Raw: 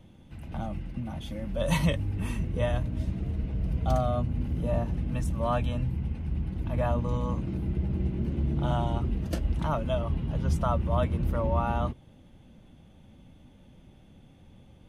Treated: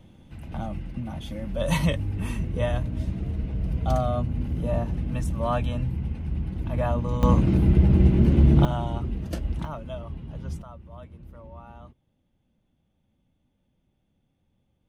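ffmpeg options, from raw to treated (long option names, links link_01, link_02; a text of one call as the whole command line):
ffmpeg -i in.wav -af "asetnsamples=nb_out_samples=441:pad=0,asendcmd='7.23 volume volume 11.5dB;8.65 volume volume -0.5dB;9.65 volume volume -7dB;10.62 volume volume -17.5dB',volume=2dB" out.wav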